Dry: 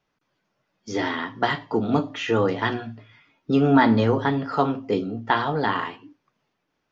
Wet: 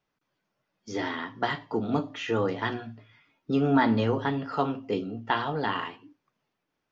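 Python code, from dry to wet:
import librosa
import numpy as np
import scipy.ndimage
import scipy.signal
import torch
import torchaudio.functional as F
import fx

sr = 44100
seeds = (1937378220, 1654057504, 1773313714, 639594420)

y = fx.peak_eq(x, sr, hz=2800.0, db=8.0, octaves=0.2, at=(3.88, 5.88))
y = y * 10.0 ** (-5.5 / 20.0)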